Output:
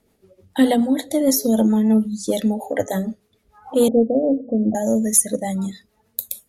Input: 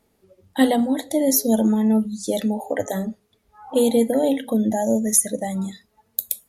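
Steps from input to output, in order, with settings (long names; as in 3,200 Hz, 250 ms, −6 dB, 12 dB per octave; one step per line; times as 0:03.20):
rotating-speaker cabinet horn 6.7 Hz
in parallel at −5 dB: soft clipping −13 dBFS, distortion −18 dB
0:03.88–0:04.75: on the sum: Chebyshev low-pass filter 710 Hz, order 5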